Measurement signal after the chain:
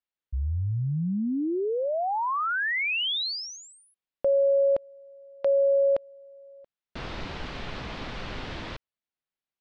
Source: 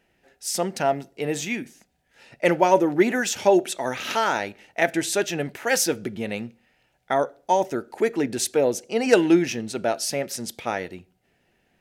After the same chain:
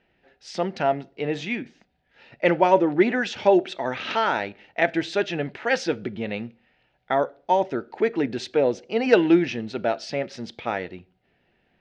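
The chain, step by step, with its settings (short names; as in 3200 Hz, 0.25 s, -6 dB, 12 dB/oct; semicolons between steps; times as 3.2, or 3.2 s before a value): LPF 4200 Hz 24 dB/oct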